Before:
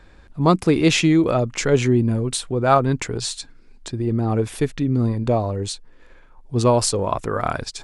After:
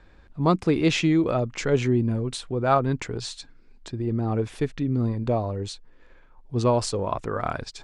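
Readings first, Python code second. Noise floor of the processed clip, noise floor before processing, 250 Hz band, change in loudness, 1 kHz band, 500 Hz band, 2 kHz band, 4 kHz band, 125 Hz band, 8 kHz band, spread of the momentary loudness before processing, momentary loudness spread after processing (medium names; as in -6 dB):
-53 dBFS, -48 dBFS, -4.5 dB, -4.5 dB, -5.0 dB, -4.5 dB, -5.0 dB, -6.5 dB, -4.5 dB, -10.5 dB, 11 LU, 12 LU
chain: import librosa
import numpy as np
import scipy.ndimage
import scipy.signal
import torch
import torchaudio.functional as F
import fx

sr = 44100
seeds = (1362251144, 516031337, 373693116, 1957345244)

y = fx.air_absorb(x, sr, metres=66.0)
y = F.gain(torch.from_numpy(y), -4.5).numpy()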